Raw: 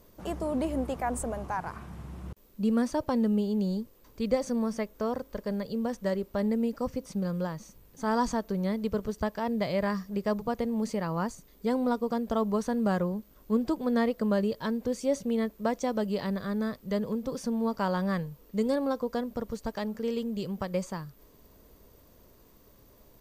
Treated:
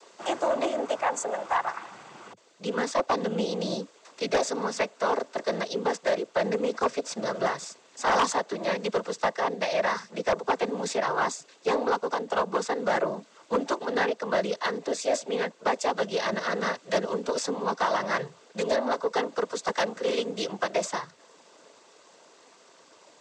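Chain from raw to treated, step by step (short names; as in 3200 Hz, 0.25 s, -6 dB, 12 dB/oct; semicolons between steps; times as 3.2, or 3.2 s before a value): HPF 630 Hz 12 dB/oct; vocal rider within 3 dB 0.5 s; noise vocoder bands 16; sine folder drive 7 dB, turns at -17 dBFS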